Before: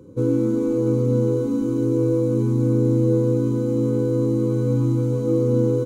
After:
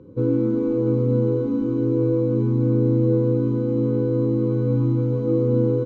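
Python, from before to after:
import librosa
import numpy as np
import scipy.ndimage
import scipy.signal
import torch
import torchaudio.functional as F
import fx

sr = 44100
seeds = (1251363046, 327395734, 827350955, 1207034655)

y = fx.air_absorb(x, sr, metres=250.0)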